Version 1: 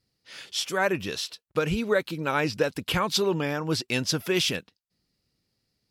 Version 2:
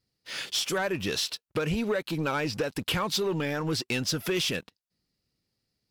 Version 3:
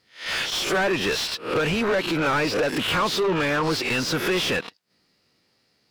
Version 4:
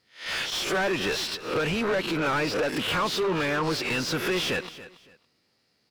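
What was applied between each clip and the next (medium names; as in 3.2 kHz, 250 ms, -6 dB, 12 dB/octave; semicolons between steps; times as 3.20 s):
compression 6:1, threshold -31 dBFS, peak gain reduction 12.5 dB; waveshaping leveller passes 2
reverse spectral sustain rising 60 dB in 0.31 s; overdrive pedal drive 26 dB, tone 2.2 kHz, clips at -14.5 dBFS
feedback delay 281 ms, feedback 25%, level -16 dB; trim -3.5 dB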